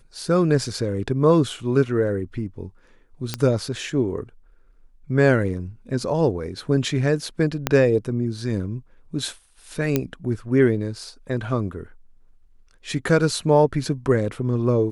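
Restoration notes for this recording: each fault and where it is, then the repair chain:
3.34 s: pop -9 dBFS
7.67 s: pop -4 dBFS
9.96 s: pop -6 dBFS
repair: de-click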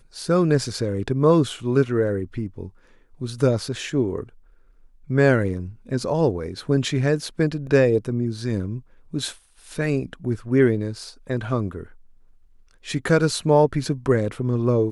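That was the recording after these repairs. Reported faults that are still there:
7.67 s: pop

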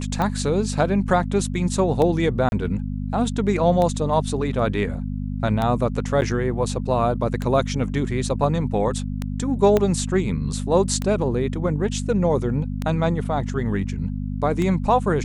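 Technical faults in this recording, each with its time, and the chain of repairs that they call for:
hum 50 Hz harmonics 5 -27 dBFS
tick 33 1/3 rpm -12 dBFS
2.49–2.52 s: dropout 31 ms
6.21–6.22 s: dropout 9.4 ms
9.77 s: pop -7 dBFS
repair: de-click; de-hum 50 Hz, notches 5; interpolate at 2.49 s, 31 ms; interpolate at 6.21 s, 9.4 ms

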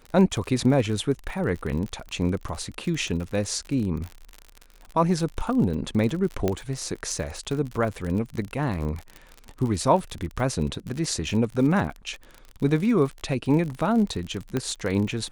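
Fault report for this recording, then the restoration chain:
crackle 47 per s -30 dBFS
6.48 s: pop -11 dBFS
14.57 s: pop -13 dBFS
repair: de-click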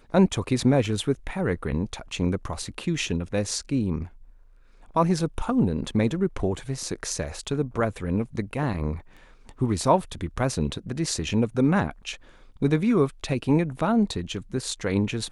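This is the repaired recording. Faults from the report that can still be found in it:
nothing left

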